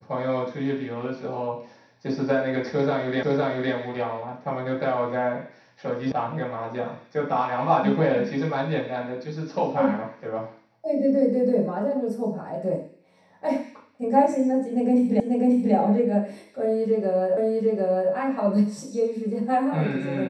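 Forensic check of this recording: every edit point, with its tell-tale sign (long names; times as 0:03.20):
0:03.23: the same again, the last 0.51 s
0:06.12: cut off before it has died away
0:15.20: the same again, the last 0.54 s
0:17.37: the same again, the last 0.75 s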